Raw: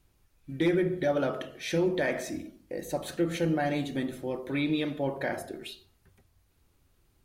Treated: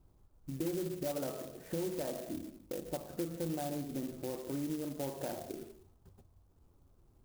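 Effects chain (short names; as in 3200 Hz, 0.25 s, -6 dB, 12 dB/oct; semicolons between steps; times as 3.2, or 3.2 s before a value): LPF 1200 Hz 24 dB/oct; compressor 2.5:1, threshold -43 dBFS, peak gain reduction 14 dB; clock jitter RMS 0.094 ms; gain +2.5 dB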